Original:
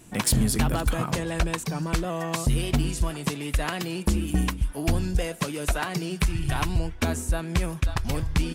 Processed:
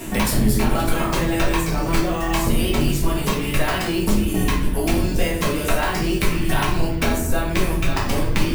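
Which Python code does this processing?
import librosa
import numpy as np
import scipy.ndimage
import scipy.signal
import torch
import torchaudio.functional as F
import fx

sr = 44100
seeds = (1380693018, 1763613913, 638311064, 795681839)

y = fx.octave_divider(x, sr, octaves=2, level_db=0.0)
y = fx.low_shelf(y, sr, hz=140.0, db=-11.5)
y = fx.room_shoebox(y, sr, seeds[0], volume_m3=100.0, walls='mixed', distance_m=1.6)
y = np.repeat(y[::2], 2)[:len(y)]
y = fx.band_squash(y, sr, depth_pct=70)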